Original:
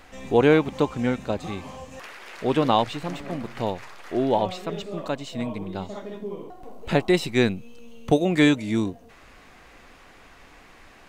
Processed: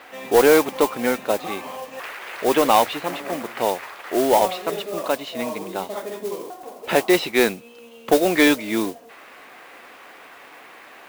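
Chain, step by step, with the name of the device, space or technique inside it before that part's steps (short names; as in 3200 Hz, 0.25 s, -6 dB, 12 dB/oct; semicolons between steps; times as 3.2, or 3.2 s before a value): carbon microphone (BPF 390–3600 Hz; soft clip -14 dBFS, distortion -15 dB; modulation noise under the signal 14 dB); gain +8 dB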